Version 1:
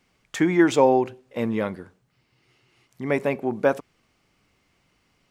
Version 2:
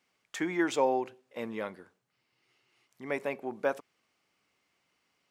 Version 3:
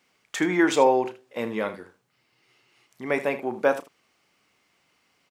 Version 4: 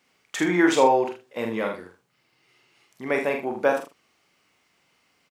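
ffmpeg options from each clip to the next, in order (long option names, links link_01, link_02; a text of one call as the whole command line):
ffmpeg -i in.wav -af "highpass=frequency=470:poles=1,volume=-7dB" out.wav
ffmpeg -i in.wav -af "aecho=1:1:33|78:0.266|0.2,volume=8dB" out.wav
ffmpeg -i in.wav -filter_complex "[0:a]asplit=2[link_01][link_02];[link_02]adelay=45,volume=-5dB[link_03];[link_01][link_03]amix=inputs=2:normalize=0" out.wav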